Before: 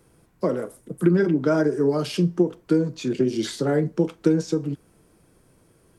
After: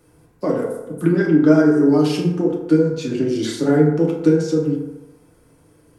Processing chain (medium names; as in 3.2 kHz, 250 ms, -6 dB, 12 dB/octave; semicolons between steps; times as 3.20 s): FDN reverb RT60 1 s, low-frequency decay 0.8×, high-frequency decay 0.45×, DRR -2 dB